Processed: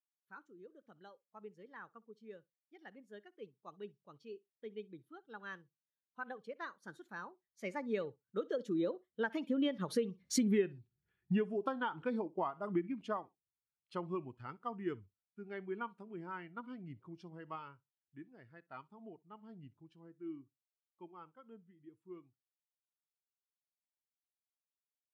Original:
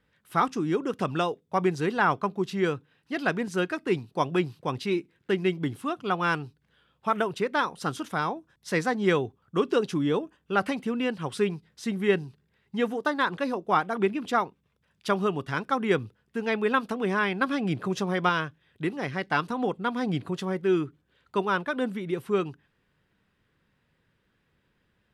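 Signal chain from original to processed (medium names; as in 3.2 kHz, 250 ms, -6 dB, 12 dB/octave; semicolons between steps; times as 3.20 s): Doppler pass-by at 10.58 s, 43 m/s, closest 6.3 m; peaking EQ 160 Hz -2.5 dB 0.3 oct; on a send: feedback delay 63 ms, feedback 21%, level -18 dB; on the sum: compression 16:1, threshold -46 dBFS, peak gain reduction 29 dB; treble shelf 2.6 kHz +4.5 dB; spectral contrast expander 1.5:1; trim +13 dB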